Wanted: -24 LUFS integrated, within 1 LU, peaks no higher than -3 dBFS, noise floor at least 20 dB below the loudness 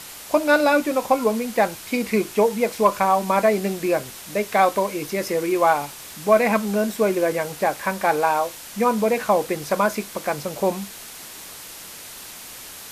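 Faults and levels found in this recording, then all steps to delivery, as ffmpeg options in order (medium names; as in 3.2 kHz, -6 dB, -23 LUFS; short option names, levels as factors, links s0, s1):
noise floor -39 dBFS; noise floor target -42 dBFS; loudness -21.5 LUFS; peak level -5.0 dBFS; loudness target -24.0 LUFS
-> -af "afftdn=nr=6:nf=-39"
-af "volume=0.75"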